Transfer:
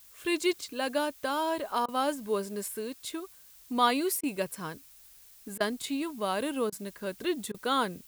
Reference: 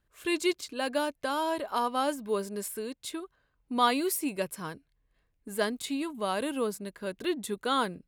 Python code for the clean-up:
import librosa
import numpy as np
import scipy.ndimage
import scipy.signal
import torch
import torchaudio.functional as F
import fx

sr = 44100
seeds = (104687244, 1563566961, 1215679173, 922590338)

y = fx.fix_interpolate(x, sr, at_s=(1.86, 4.21, 5.58, 6.7, 7.52), length_ms=22.0)
y = fx.noise_reduce(y, sr, print_start_s=4.86, print_end_s=5.36, reduce_db=18.0)